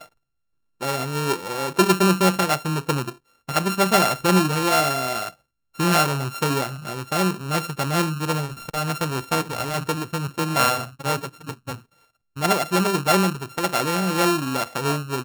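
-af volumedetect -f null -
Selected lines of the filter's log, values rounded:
mean_volume: -23.2 dB
max_volume: -3.8 dB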